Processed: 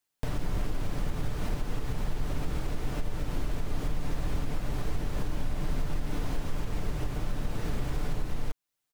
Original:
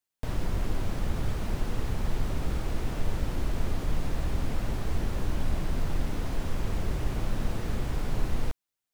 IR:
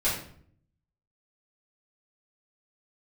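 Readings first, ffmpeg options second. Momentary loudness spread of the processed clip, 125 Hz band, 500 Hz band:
2 LU, -2.5 dB, -2.0 dB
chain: -af "aecho=1:1:6.8:0.32,alimiter=limit=0.0631:level=0:latency=1:release=318,volume=1.58"

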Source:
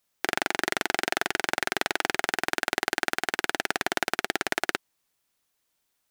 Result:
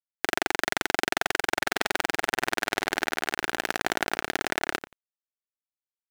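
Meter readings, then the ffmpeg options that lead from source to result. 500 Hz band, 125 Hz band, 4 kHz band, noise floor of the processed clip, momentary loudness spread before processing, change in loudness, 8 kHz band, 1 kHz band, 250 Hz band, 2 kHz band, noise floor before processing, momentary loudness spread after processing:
+0.5 dB, +1.0 dB, 0.0 dB, under -85 dBFS, 2 LU, +0.5 dB, 0.0 dB, +0.5 dB, +0.5 dB, 0.0 dB, -76 dBFS, 2 LU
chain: -filter_complex "[0:a]asplit=2[s0][s1];[s1]adelay=89,lowpass=f=1200:p=1,volume=0.398,asplit=2[s2][s3];[s3]adelay=89,lowpass=f=1200:p=1,volume=0.24,asplit=2[s4][s5];[s5]adelay=89,lowpass=f=1200:p=1,volume=0.24[s6];[s2][s4][s6]amix=inputs=3:normalize=0[s7];[s0][s7]amix=inputs=2:normalize=0,aeval=exprs='val(0)+0.00251*(sin(2*PI*60*n/s)+sin(2*PI*2*60*n/s)/2+sin(2*PI*3*60*n/s)/3+sin(2*PI*4*60*n/s)/4+sin(2*PI*5*60*n/s)/5)':c=same,aeval=exprs='val(0)*gte(abs(val(0)),0.015)':c=same"

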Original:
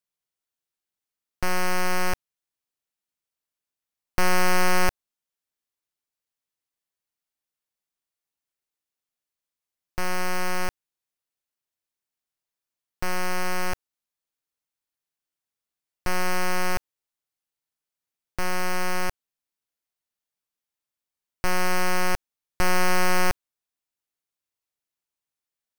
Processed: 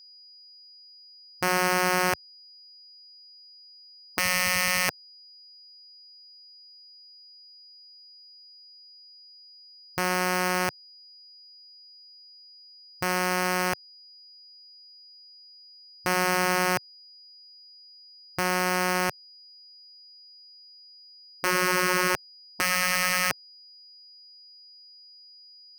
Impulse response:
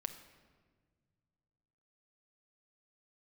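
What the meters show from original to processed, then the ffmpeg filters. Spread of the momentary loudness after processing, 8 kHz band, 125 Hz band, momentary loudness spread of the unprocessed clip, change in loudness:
9 LU, +3.5 dB, -1.0 dB, 11 LU, +2.0 dB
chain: -af "aeval=exprs='val(0)+0.00251*sin(2*PI*4900*n/s)':c=same,afftfilt=real='re*lt(hypot(re,im),0.2)':imag='im*lt(hypot(re,im),0.2)':win_size=1024:overlap=0.75,volume=1.5"

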